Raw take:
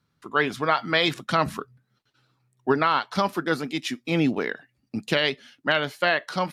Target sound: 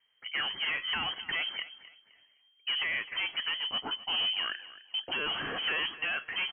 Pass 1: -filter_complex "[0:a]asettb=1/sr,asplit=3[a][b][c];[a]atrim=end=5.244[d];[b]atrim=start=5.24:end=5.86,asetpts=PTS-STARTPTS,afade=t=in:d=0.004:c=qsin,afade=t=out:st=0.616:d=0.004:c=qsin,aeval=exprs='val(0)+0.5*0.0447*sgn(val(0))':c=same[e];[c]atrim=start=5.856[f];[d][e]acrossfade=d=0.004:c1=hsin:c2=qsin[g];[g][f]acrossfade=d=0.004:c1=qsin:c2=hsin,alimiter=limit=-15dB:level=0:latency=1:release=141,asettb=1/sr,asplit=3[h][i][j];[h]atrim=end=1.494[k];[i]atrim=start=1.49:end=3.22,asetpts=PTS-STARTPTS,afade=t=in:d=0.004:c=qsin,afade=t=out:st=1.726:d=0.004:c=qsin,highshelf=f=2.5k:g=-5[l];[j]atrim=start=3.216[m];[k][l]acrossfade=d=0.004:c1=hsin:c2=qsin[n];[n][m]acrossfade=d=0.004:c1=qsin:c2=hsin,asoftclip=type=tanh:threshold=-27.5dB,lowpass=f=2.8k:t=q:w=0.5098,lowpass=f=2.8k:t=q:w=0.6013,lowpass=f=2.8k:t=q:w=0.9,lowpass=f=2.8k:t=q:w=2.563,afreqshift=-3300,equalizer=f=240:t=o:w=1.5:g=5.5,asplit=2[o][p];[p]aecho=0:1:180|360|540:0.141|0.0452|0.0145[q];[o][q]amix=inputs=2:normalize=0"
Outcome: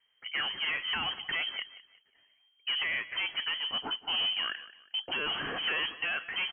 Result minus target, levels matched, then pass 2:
echo 79 ms early
-filter_complex "[0:a]asettb=1/sr,asplit=3[a][b][c];[a]atrim=end=5.244[d];[b]atrim=start=5.24:end=5.86,asetpts=PTS-STARTPTS,afade=t=in:d=0.004:c=qsin,afade=t=out:st=0.616:d=0.004:c=qsin,aeval=exprs='val(0)+0.5*0.0447*sgn(val(0))':c=same[e];[c]atrim=start=5.856[f];[d][e]acrossfade=d=0.004:c1=hsin:c2=qsin[g];[g][f]acrossfade=d=0.004:c1=qsin:c2=hsin,alimiter=limit=-15dB:level=0:latency=1:release=141,asettb=1/sr,asplit=3[h][i][j];[h]atrim=end=1.494[k];[i]atrim=start=1.49:end=3.22,asetpts=PTS-STARTPTS,afade=t=in:d=0.004:c=qsin,afade=t=out:st=1.726:d=0.004:c=qsin,highshelf=f=2.5k:g=-5[l];[j]atrim=start=3.216[m];[k][l]acrossfade=d=0.004:c1=hsin:c2=qsin[n];[n][m]acrossfade=d=0.004:c1=qsin:c2=hsin,asoftclip=type=tanh:threshold=-27.5dB,lowpass=f=2.8k:t=q:w=0.5098,lowpass=f=2.8k:t=q:w=0.6013,lowpass=f=2.8k:t=q:w=0.9,lowpass=f=2.8k:t=q:w=2.563,afreqshift=-3300,equalizer=f=240:t=o:w=1.5:g=5.5,asplit=2[o][p];[p]aecho=0:1:259|518|777:0.141|0.0452|0.0145[q];[o][q]amix=inputs=2:normalize=0"

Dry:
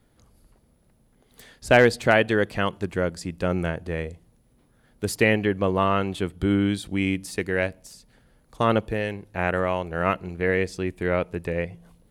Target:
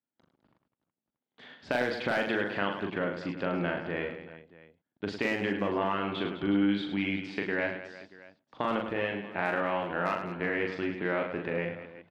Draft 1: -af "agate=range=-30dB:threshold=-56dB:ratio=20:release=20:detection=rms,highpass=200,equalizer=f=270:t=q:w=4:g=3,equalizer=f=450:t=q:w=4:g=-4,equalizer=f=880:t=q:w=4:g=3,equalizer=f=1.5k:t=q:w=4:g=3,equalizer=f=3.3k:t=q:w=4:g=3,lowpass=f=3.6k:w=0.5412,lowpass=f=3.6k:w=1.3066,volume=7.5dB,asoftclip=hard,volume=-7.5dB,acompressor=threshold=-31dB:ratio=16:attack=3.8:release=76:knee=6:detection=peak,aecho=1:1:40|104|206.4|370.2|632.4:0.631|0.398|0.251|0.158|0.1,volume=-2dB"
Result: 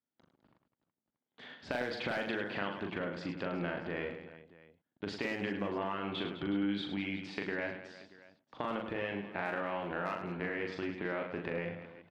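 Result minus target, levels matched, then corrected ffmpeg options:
compressor: peak gain reduction +7 dB
-af "agate=range=-30dB:threshold=-56dB:ratio=20:release=20:detection=rms,highpass=200,equalizer=f=270:t=q:w=4:g=3,equalizer=f=450:t=q:w=4:g=-4,equalizer=f=880:t=q:w=4:g=3,equalizer=f=1.5k:t=q:w=4:g=3,equalizer=f=3.3k:t=q:w=4:g=3,lowpass=f=3.6k:w=0.5412,lowpass=f=3.6k:w=1.3066,volume=7.5dB,asoftclip=hard,volume=-7.5dB,acompressor=threshold=-23.5dB:ratio=16:attack=3.8:release=76:knee=6:detection=peak,aecho=1:1:40|104|206.4|370.2|632.4:0.631|0.398|0.251|0.158|0.1,volume=-2dB"

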